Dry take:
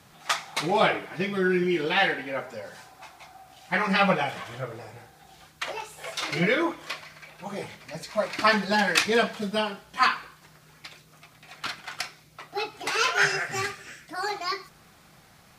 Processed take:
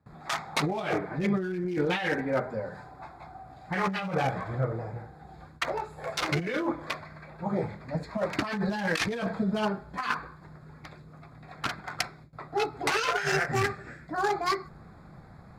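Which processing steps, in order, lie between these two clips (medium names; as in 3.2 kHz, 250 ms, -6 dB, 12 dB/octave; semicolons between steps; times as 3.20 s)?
local Wiener filter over 15 samples; gate with hold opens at -49 dBFS; bass shelf 210 Hz +8.5 dB; compressor with a negative ratio -28 dBFS, ratio -1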